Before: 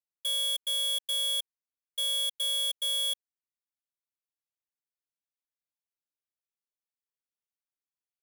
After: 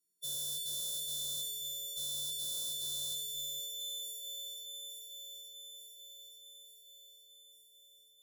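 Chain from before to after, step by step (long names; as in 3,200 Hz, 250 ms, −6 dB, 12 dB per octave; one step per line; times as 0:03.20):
every partial snapped to a pitch grid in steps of 4 semitones
low shelf with overshoot 570 Hz +10.5 dB, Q 3
feedback echo with a long and a short gap by turns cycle 875 ms, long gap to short 1.5 to 1, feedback 59%, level −17 dB
four-comb reverb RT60 3.2 s, combs from 25 ms, DRR 13 dB
gain into a clipping stage and back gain 35 dB
elliptic band-stop filter 1,600–3,400 Hz, stop band 40 dB
flanger 0.58 Hz, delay 1 ms, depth 2.7 ms, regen −88%
drawn EQ curve 110 Hz 0 dB, 180 Hz +8 dB, 370 Hz +3 dB, 550 Hz −2 dB, 1,200 Hz −6 dB, 7,300 Hz +9 dB, 14,000 Hz +4 dB
level that may fall only so fast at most 20 dB per second
level −2 dB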